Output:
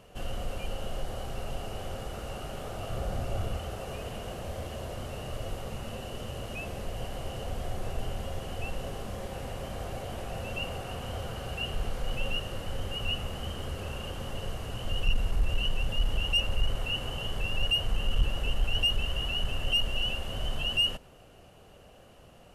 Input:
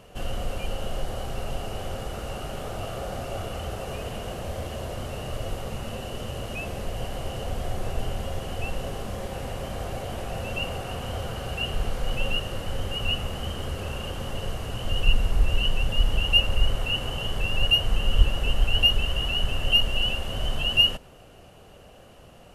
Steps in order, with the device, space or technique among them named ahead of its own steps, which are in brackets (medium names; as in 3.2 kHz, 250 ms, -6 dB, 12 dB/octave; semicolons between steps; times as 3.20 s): 2.90–3.57 s: bass shelf 160 Hz +10 dB; saturation between pre-emphasis and de-emphasis (treble shelf 3.5 kHz +10.5 dB; saturation -11 dBFS, distortion -17 dB; treble shelf 3.5 kHz -10.5 dB); trim -4.5 dB